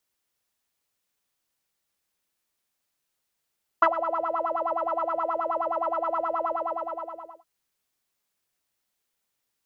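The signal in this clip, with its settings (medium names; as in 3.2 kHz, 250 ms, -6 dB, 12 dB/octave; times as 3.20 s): synth patch with filter wobble E5, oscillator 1 saw, oscillator 2 square, interval +7 st, oscillator 2 level -9 dB, noise -12 dB, filter lowpass, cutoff 700 Hz, Q 8.6, filter envelope 0.5 oct, attack 8.3 ms, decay 0.06 s, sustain -14.5 dB, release 0.98 s, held 2.64 s, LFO 9.5 Hz, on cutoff 0.8 oct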